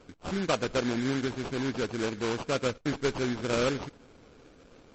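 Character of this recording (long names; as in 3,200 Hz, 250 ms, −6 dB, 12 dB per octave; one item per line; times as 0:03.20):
aliases and images of a low sample rate 1,900 Hz, jitter 20%
MP3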